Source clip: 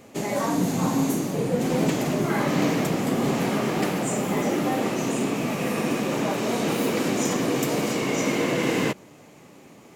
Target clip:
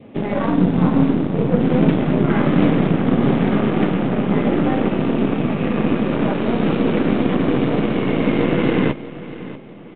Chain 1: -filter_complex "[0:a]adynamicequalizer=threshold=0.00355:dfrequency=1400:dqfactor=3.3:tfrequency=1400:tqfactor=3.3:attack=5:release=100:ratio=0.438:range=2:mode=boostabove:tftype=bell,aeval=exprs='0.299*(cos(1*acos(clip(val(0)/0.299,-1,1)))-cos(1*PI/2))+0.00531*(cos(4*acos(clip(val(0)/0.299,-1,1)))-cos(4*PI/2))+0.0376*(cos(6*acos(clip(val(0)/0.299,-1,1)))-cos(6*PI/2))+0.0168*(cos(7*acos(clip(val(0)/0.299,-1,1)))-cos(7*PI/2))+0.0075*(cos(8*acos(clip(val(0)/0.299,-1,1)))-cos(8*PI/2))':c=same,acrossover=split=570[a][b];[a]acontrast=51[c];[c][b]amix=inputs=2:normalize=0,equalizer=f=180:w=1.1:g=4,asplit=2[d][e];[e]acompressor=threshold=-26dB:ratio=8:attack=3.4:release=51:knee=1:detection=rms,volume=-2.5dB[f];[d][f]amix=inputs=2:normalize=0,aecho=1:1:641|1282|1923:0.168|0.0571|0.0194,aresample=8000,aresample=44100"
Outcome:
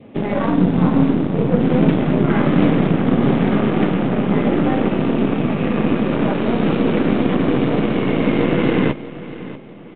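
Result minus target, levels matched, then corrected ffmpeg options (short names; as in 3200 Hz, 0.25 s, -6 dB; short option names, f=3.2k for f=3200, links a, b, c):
compressor: peak gain reduction -7 dB
-filter_complex "[0:a]adynamicequalizer=threshold=0.00355:dfrequency=1400:dqfactor=3.3:tfrequency=1400:tqfactor=3.3:attack=5:release=100:ratio=0.438:range=2:mode=boostabove:tftype=bell,aeval=exprs='0.299*(cos(1*acos(clip(val(0)/0.299,-1,1)))-cos(1*PI/2))+0.00531*(cos(4*acos(clip(val(0)/0.299,-1,1)))-cos(4*PI/2))+0.0376*(cos(6*acos(clip(val(0)/0.299,-1,1)))-cos(6*PI/2))+0.0168*(cos(7*acos(clip(val(0)/0.299,-1,1)))-cos(7*PI/2))+0.0075*(cos(8*acos(clip(val(0)/0.299,-1,1)))-cos(8*PI/2))':c=same,acrossover=split=570[a][b];[a]acontrast=51[c];[c][b]amix=inputs=2:normalize=0,equalizer=f=180:w=1.1:g=4,asplit=2[d][e];[e]acompressor=threshold=-34dB:ratio=8:attack=3.4:release=51:knee=1:detection=rms,volume=-2.5dB[f];[d][f]amix=inputs=2:normalize=0,aecho=1:1:641|1282|1923:0.168|0.0571|0.0194,aresample=8000,aresample=44100"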